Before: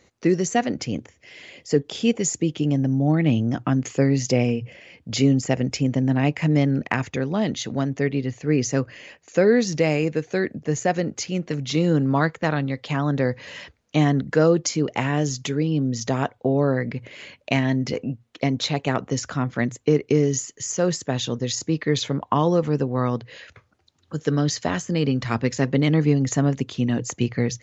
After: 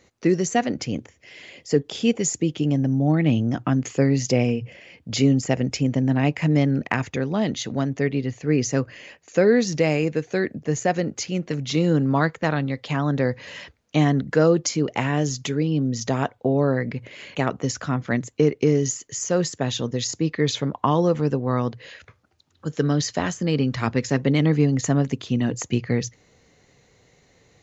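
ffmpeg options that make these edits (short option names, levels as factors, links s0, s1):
-filter_complex "[0:a]asplit=2[s0][s1];[s0]atrim=end=17.352[s2];[s1]atrim=start=18.828[s3];[s2][s3]acrossfade=d=0.004:c1=hsin:c2=hsin"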